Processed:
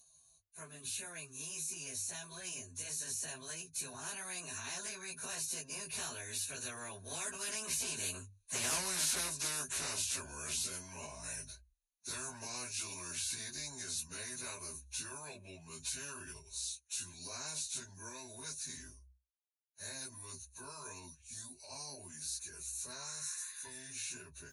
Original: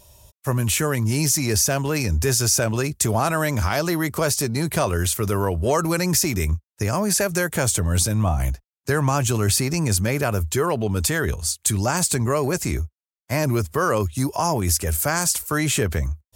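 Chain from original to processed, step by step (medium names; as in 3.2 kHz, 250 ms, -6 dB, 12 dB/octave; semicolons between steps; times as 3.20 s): Doppler pass-by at 5.83 s, 56 m/s, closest 3.7 m; resampled via 22.05 kHz; spectral replace 15.35–15.88 s, 1–5.2 kHz both; rippled EQ curve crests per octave 1.5, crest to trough 16 dB; in parallel at -2 dB: compression 5:1, threshold -51 dBFS, peak gain reduction 30.5 dB; on the sum: plain phase-vocoder stretch 1.5×; pre-emphasis filter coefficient 0.9; spectrum-flattening compressor 4:1; trim -2.5 dB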